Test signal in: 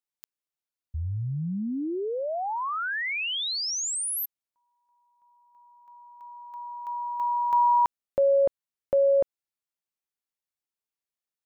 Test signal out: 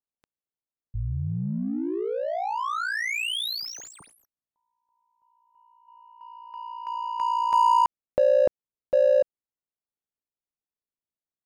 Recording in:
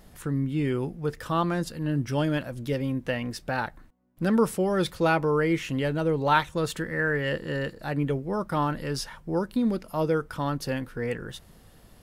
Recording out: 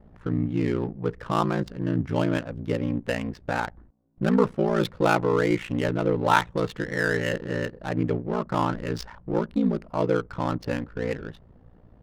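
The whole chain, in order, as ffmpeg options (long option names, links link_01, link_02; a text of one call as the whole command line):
ffmpeg -i in.wav -af "adynamicsmooth=sensitivity=6:basefreq=910,aeval=exprs='val(0)*sin(2*PI*29*n/s)':channel_layout=same,volume=4.5dB" out.wav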